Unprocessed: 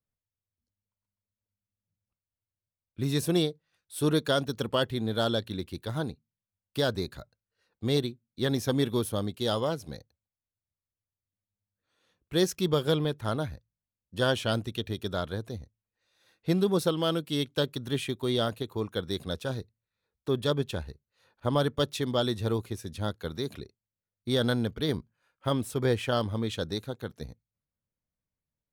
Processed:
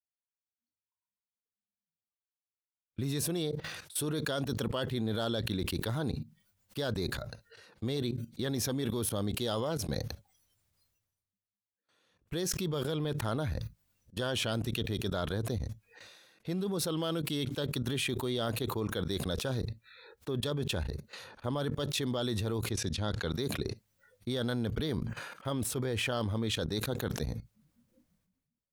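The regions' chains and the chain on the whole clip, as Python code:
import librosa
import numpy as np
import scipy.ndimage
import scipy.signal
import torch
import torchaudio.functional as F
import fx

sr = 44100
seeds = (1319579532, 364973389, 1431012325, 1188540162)

y = fx.chain(x, sr, fx.lowpass(hz=5100.0, slope=12),
    fx.high_shelf(hz=3800.0, db=7.5), at=(22.71, 23.32))
y = fx.level_steps(y, sr, step_db=20)
y = fx.noise_reduce_blind(y, sr, reduce_db=24)
y = fx.sustainer(y, sr, db_per_s=42.0)
y = F.gain(torch.from_numpy(y), 7.5).numpy()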